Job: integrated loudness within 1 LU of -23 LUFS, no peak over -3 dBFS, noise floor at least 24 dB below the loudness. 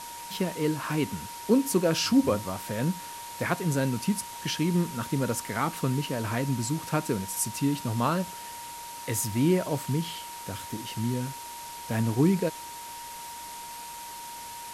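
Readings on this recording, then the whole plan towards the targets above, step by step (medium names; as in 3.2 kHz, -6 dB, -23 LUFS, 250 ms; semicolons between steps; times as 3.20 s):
steady tone 940 Hz; tone level -40 dBFS; noise floor -41 dBFS; noise floor target -53 dBFS; loudness -29.0 LUFS; peak level -10.0 dBFS; loudness target -23.0 LUFS
-> band-stop 940 Hz, Q 30; noise reduction 12 dB, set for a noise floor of -41 dBFS; trim +6 dB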